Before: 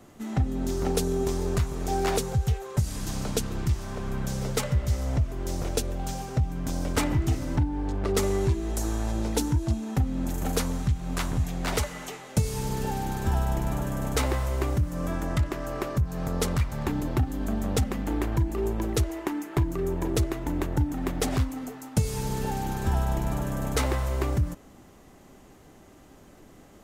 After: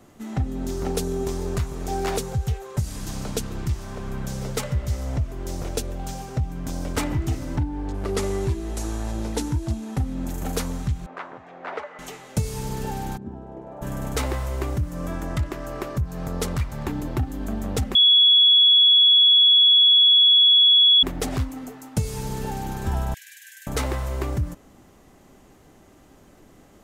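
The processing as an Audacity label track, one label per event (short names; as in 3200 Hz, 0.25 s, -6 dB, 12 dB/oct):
7.940000	10.140000	CVSD 64 kbps
11.060000	11.990000	Butterworth band-pass 910 Hz, Q 0.62
13.160000	13.810000	band-pass 210 Hz -> 650 Hz, Q 2
17.950000	21.030000	bleep 3370 Hz -11.5 dBFS
23.140000	23.670000	brick-wall FIR high-pass 1500 Hz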